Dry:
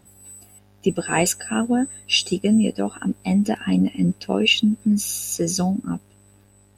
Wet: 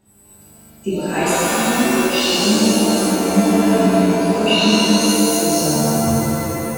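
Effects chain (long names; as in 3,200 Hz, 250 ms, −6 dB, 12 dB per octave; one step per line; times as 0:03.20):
turntable brake at the end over 1.33 s
reverb with rising layers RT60 3.1 s, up +7 semitones, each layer −2 dB, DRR −10.5 dB
level −8 dB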